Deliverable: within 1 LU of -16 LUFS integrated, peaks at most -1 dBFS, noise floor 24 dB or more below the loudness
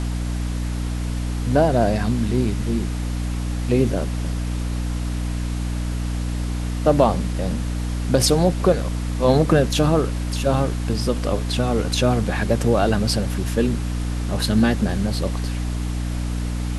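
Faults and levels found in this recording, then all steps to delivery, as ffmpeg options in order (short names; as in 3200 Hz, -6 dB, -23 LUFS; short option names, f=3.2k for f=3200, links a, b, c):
hum 60 Hz; harmonics up to 300 Hz; hum level -22 dBFS; noise floor -25 dBFS; noise floor target -46 dBFS; loudness -22.0 LUFS; peak -2.5 dBFS; loudness target -16.0 LUFS
-> -af "bandreject=f=60:t=h:w=4,bandreject=f=120:t=h:w=4,bandreject=f=180:t=h:w=4,bandreject=f=240:t=h:w=4,bandreject=f=300:t=h:w=4"
-af "afftdn=nr=21:nf=-25"
-af "volume=6dB,alimiter=limit=-1dB:level=0:latency=1"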